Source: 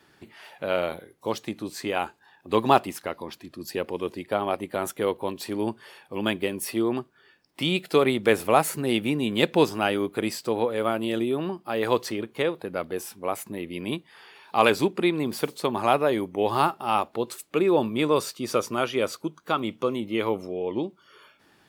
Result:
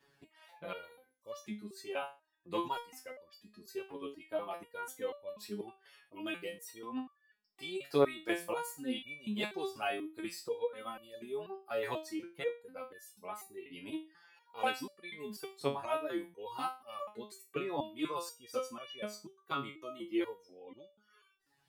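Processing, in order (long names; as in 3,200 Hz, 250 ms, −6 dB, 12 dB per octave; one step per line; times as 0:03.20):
reverb reduction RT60 1.4 s
step-sequenced resonator 4.1 Hz 140–580 Hz
level +1.5 dB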